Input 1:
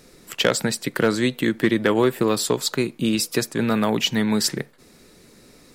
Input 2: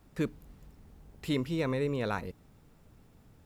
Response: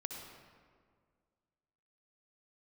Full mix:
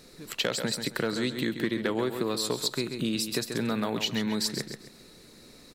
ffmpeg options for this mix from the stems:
-filter_complex "[0:a]volume=-3dB,asplit=2[link_01][link_02];[link_02]volume=-10dB[link_03];[1:a]volume=-15dB[link_04];[link_03]aecho=0:1:134|268|402|536:1|0.28|0.0784|0.022[link_05];[link_01][link_04][link_05]amix=inputs=3:normalize=0,equalizer=frequency=4100:width_type=o:width=0.23:gain=9,acompressor=threshold=-28dB:ratio=2.5"

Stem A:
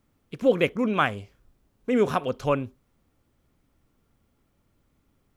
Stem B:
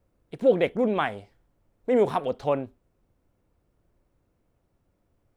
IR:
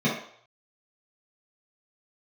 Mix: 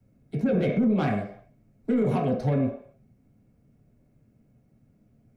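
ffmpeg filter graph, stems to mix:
-filter_complex "[0:a]volume=-13dB[link_01];[1:a]equalizer=frequency=3500:width=4.2:gain=-12.5,asoftclip=type=tanh:threshold=-19dB,volume=0.5dB,asplit=2[link_02][link_03];[link_03]volume=-11dB[link_04];[2:a]atrim=start_sample=2205[link_05];[link_04][link_05]afir=irnorm=-1:irlink=0[link_06];[link_01][link_02][link_06]amix=inputs=3:normalize=0,equalizer=frequency=100:width_type=o:width=0.67:gain=4,equalizer=frequency=400:width_type=o:width=0.67:gain=-3,equalizer=frequency=1000:width_type=o:width=0.67:gain=-9,acrossover=split=150[link_07][link_08];[link_08]acompressor=threshold=-17dB:ratio=6[link_09];[link_07][link_09]amix=inputs=2:normalize=0,alimiter=limit=-16.5dB:level=0:latency=1:release=14"

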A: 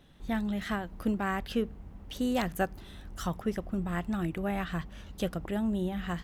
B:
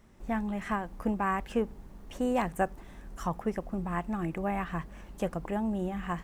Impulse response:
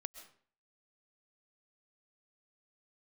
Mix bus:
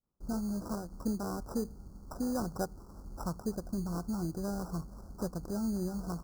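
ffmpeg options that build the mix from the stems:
-filter_complex "[0:a]highshelf=frequency=5000:gain=6.5,volume=-5.5dB[link_01];[1:a]acompressor=threshold=-36dB:ratio=6,volume=-5.5dB[link_02];[link_01][link_02]amix=inputs=2:normalize=0,agate=range=-33dB:threshold=-45dB:ratio=3:detection=peak,acrusher=samples=20:mix=1:aa=0.000001,asuperstop=centerf=2600:order=12:qfactor=0.82"

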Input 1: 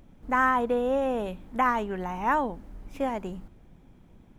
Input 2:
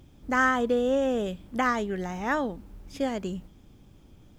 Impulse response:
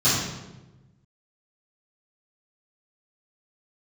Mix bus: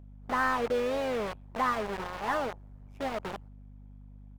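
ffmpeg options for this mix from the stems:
-filter_complex "[0:a]tremolo=f=97:d=0.974,equalizer=frequency=820:width=0.53:gain=9.5,volume=-14dB[link_01];[1:a]lowpass=3100,acrusher=bits=4:mix=0:aa=0.000001,asplit=2[link_02][link_03];[link_03]highpass=frequency=720:poles=1,volume=11dB,asoftclip=type=tanh:threshold=-13.5dB[link_04];[link_02][link_04]amix=inputs=2:normalize=0,lowpass=frequency=1000:poles=1,volume=-6dB,volume=-1,adelay=5.2,volume=-3.5dB[link_05];[link_01][link_05]amix=inputs=2:normalize=0,equalizer=frequency=290:width=1.9:gain=-6.5,aeval=exprs='val(0)+0.00398*(sin(2*PI*50*n/s)+sin(2*PI*2*50*n/s)/2+sin(2*PI*3*50*n/s)/3+sin(2*PI*4*50*n/s)/4+sin(2*PI*5*50*n/s)/5)':channel_layout=same"

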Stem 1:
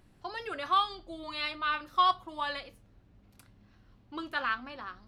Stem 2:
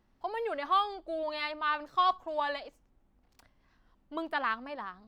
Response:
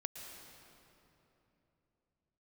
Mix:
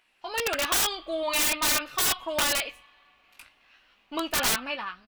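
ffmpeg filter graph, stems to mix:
-filter_complex "[0:a]highpass=780,equalizer=frequency=2600:width=1.9:gain=13,flanger=delay=15:depth=3.5:speed=0.47,volume=1.5dB,asplit=2[link_01][link_02];[link_02]volume=-21.5dB[link_03];[1:a]agate=range=-16dB:threshold=-59dB:ratio=16:detection=peak,bass=frequency=250:gain=0,treble=frequency=4000:gain=5,adelay=0.3,volume=-3dB[link_04];[2:a]atrim=start_sample=2205[link_05];[link_03][link_05]afir=irnorm=-1:irlink=0[link_06];[link_01][link_04][link_06]amix=inputs=3:normalize=0,dynaudnorm=framelen=100:gausssize=7:maxgain=7dB,aeval=exprs='(mod(8.41*val(0)+1,2)-1)/8.41':channel_layout=same"

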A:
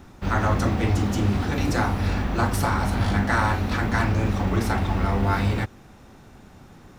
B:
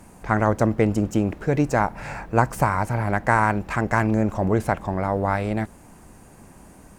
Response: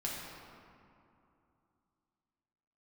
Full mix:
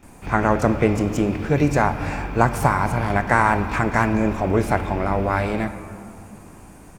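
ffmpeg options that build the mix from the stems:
-filter_complex "[0:a]equalizer=frequency=2400:width_type=o:width=0.25:gain=12.5,bandreject=frequency=4000:width=12,volume=-10.5dB,asplit=2[link_01][link_02];[link_02]volume=-6.5dB[link_03];[1:a]adelay=28,volume=0dB,asplit=2[link_04][link_05];[link_05]volume=-10dB[link_06];[2:a]atrim=start_sample=2205[link_07];[link_03][link_06]amix=inputs=2:normalize=0[link_08];[link_08][link_07]afir=irnorm=-1:irlink=0[link_09];[link_01][link_04][link_09]amix=inputs=3:normalize=0"

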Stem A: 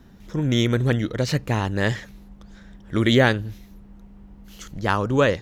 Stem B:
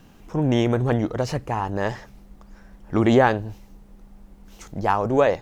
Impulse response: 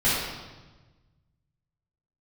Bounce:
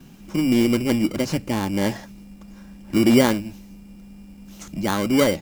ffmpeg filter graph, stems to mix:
-filter_complex "[0:a]lowpass=frequency=2300:poles=1,equalizer=frequency=290:width_type=o:width=1.5:gain=8.5,acrusher=samples=17:mix=1:aa=0.000001,volume=-4.5dB[link_01];[1:a]highshelf=frequency=2600:gain=11,asoftclip=type=tanh:threshold=-22.5dB,equalizer=frequency=160:width=1.5:gain=11.5,adelay=4.2,volume=-4.5dB[link_02];[link_01][link_02]amix=inputs=2:normalize=0"

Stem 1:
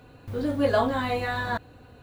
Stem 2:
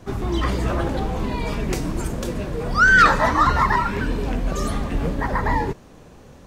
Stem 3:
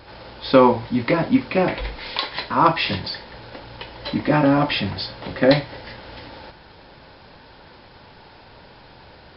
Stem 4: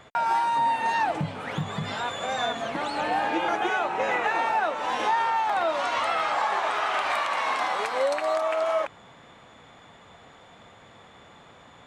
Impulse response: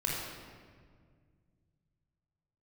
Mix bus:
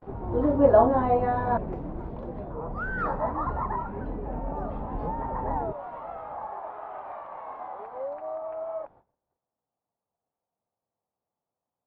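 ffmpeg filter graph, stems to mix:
-filter_complex "[0:a]equalizer=frequency=71:width=0.32:gain=-3,acrusher=bits=7:mix=0:aa=0.000001,volume=2.5dB[link_01];[1:a]volume=-11dB[link_02];[2:a]acompressor=threshold=-28dB:ratio=3,volume=-16dB[link_03];[3:a]volume=-12.5dB,afade=type=in:start_time=4.23:duration=0.68:silence=0.281838[link_04];[link_01][link_02][link_03][link_04]amix=inputs=4:normalize=0,agate=range=-27dB:threshold=-55dB:ratio=16:detection=peak,lowpass=frequency=790:width_type=q:width=1.6"

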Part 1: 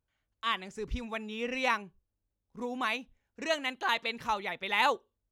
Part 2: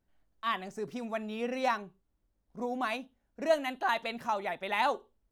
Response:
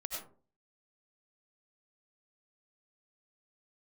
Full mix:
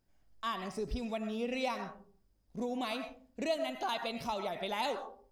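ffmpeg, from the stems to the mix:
-filter_complex "[0:a]equalizer=frequency=610:width_type=o:width=2.5:gain=-10.5,volume=2dB[link_01];[1:a]equalizer=frequency=5000:width=6.6:gain=12,volume=-2dB,asplit=2[link_02][link_03];[link_03]volume=-5.5dB[link_04];[2:a]atrim=start_sample=2205[link_05];[link_04][link_05]afir=irnorm=-1:irlink=0[link_06];[link_01][link_02][link_06]amix=inputs=3:normalize=0,acompressor=threshold=-36dB:ratio=2"

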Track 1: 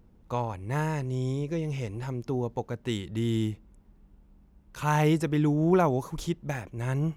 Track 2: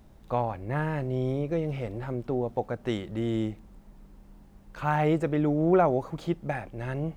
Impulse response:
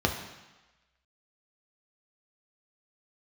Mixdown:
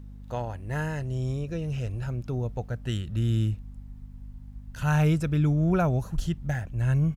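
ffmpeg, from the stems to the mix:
-filter_complex "[0:a]asubboost=boost=5.5:cutoff=140,aeval=exprs='val(0)+0.0112*(sin(2*PI*50*n/s)+sin(2*PI*2*50*n/s)/2+sin(2*PI*3*50*n/s)/3+sin(2*PI*4*50*n/s)/4+sin(2*PI*5*50*n/s)/5)':channel_layout=same,volume=-2.5dB[link_01];[1:a]highpass=1100,adelay=0.6,volume=-4.5dB[link_02];[link_01][link_02]amix=inputs=2:normalize=0"

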